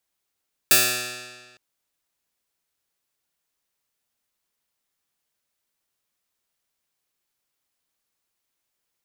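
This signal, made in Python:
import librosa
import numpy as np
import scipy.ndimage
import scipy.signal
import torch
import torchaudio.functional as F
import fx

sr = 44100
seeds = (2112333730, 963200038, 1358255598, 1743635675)

y = fx.pluck(sr, length_s=0.86, note=47, decay_s=1.54, pick=0.12, brightness='bright')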